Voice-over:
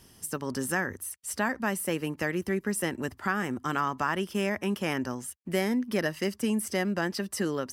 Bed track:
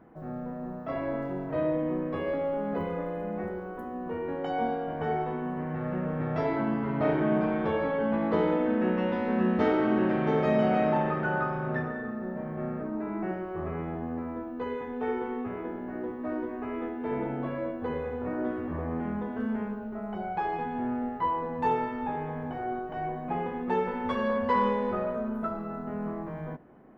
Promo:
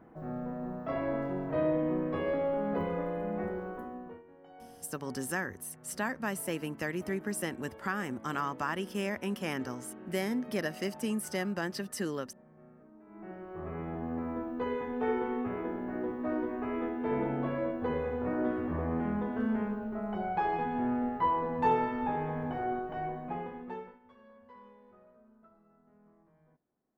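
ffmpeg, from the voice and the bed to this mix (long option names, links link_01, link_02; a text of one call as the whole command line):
ffmpeg -i stem1.wav -i stem2.wav -filter_complex "[0:a]adelay=4600,volume=-5dB[link_01];[1:a]volume=22dB,afade=type=out:start_time=3.68:duration=0.55:silence=0.0794328,afade=type=in:start_time=13.06:duration=1.31:silence=0.0707946,afade=type=out:start_time=22.63:duration=1.36:silence=0.0334965[link_02];[link_01][link_02]amix=inputs=2:normalize=0" out.wav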